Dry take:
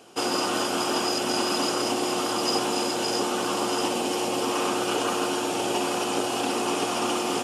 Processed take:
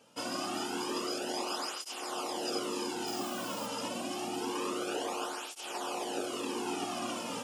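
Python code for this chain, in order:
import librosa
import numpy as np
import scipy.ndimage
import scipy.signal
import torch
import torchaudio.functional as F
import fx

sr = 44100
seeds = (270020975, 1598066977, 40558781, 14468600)

y = fx.dmg_noise_colour(x, sr, seeds[0], colour='violet', level_db=-39.0, at=(3.06, 3.66), fade=0.02)
y = fx.flanger_cancel(y, sr, hz=0.27, depth_ms=2.8)
y = F.gain(torch.from_numpy(y), -7.5).numpy()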